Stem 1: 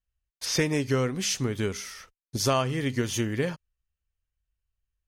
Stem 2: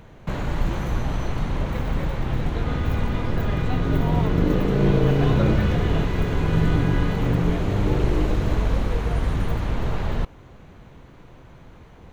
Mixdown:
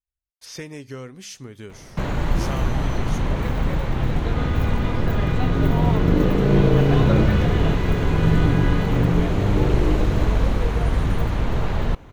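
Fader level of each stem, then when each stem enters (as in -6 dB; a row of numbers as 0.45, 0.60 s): -10.0, +2.5 dB; 0.00, 1.70 s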